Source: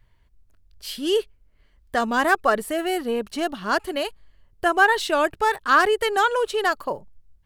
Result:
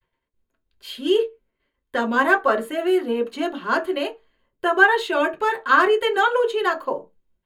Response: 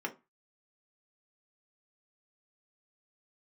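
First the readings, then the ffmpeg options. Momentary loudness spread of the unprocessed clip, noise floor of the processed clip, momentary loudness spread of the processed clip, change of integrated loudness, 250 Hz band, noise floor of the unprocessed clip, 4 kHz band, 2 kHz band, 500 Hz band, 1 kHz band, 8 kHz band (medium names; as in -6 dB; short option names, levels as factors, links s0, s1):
11 LU, -79 dBFS, 13 LU, +1.5 dB, +2.5 dB, -59 dBFS, -0.5 dB, +2.5 dB, +2.5 dB, 0.0 dB, no reading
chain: -filter_complex "[0:a]agate=range=0.0224:threshold=0.00316:ratio=3:detection=peak[s0];[1:a]atrim=start_sample=2205,asetrate=52920,aresample=44100[s1];[s0][s1]afir=irnorm=-1:irlink=0,volume=0.891"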